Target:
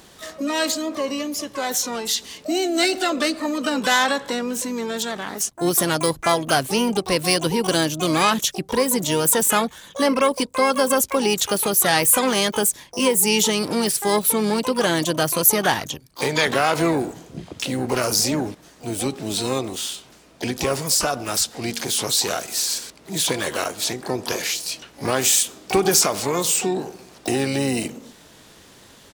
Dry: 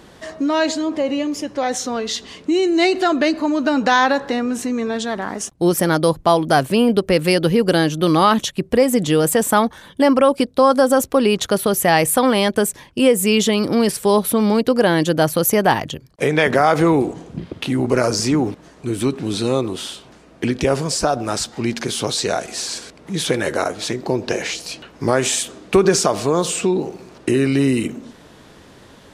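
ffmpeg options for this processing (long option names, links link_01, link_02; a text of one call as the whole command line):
ffmpeg -i in.wav -filter_complex "[0:a]asplit=3[link_01][link_02][link_03];[link_02]asetrate=35002,aresample=44100,atempo=1.25992,volume=-17dB[link_04];[link_03]asetrate=88200,aresample=44100,atempo=0.5,volume=-9dB[link_05];[link_01][link_04][link_05]amix=inputs=3:normalize=0,highshelf=frequency=2900:gain=11.5,volume=-6.5dB" out.wav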